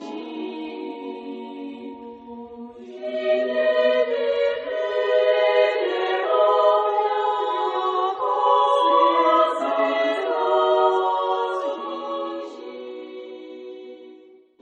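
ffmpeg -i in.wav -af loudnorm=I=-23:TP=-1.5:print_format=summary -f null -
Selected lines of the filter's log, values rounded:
Input Integrated:    -21.2 LUFS
Input True Peak:      -5.7 dBTP
Input LRA:            14.1 LU
Input Threshold:     -33.1 LUFS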